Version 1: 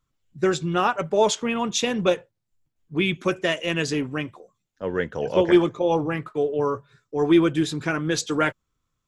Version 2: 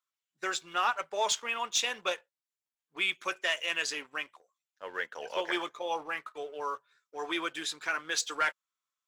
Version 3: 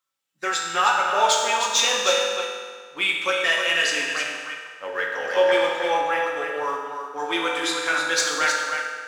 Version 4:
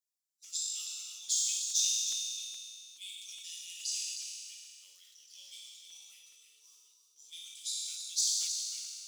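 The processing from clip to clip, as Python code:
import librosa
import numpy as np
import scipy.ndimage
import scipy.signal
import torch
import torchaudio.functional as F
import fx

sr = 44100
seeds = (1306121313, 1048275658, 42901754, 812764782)

y1 = scipy.signal.sosfilt(scipy.signal.butter(2, 1000.0, 'highpass', fs=sr, output='sos'), x)
y1 = fx.leveller(y1, sr, passes=1)
y1 = F.gain(torch.from_numpy(y1), -6.0).numpy()
y2 = y1 + 10.0 ** (-7.0 / 20.0) * np.pad(y1, (int(312 * sr / 1000.0), 0))[:len(y1)]
y2 = fx.rev_fdn(y2, sr, rt60_s=1.8, lf_ratio=1.0, hf_ratio=0.8, size_ms=11.0, drr_db=-2.0)
y2 = F.gain(torch.from_numpy(y2), 6.0).numpy()
y3 = scipy.signal.sosfilt(scipy.signal.cheby2(4, 50, 1800.0, 'highpass', fs=sr, output='sos'), y2)
y3 = fx.buffer_crackle(y3, sr, first_s=0.44, period_s=0.42, block=128, kind='repeat')
y3 = fx.sustainer(y3, sr, db_per_s=24.0)
y3 = F.gain(torch.from_numpy(y3), -6.5).numpy()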